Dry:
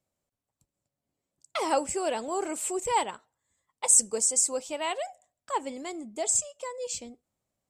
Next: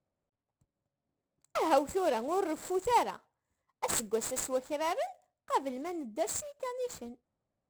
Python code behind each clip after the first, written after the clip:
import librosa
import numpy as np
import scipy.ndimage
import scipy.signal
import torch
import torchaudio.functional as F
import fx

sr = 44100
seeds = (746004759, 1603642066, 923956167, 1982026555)

y = scipy.ndimage.median_filter(x, 15, mode='constant')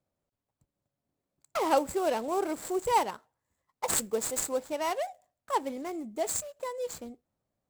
y = fx.high_shelf(x, sr, hz=7400.0, db=4.5)
y = F.gain(torch.from_numpy(y), 1.5).numpy()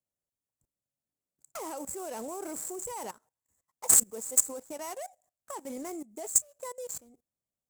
y = fx.high_shelf_res(x, sr, hz=5400.0, db=10.5, q=1.5)
y = fx.level_steps(y, sr, step_db=19)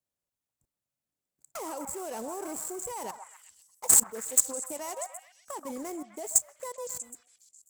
y = fx.echo_stepped(x, sr, ms=128, hz=1000.0, octaves=0.7, feedback_pct=70, wet_db=-5)
y = F.gain(torch.from_numpy(y), 1.0).numpy()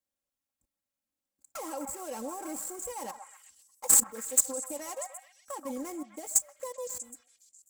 y = x + 0.75 * np.pad(x, (int(3.7 * sr / 1000.0), 0))[:len(x)]
y = F.gain(torch.from_numpy(y), -3.0).numpy()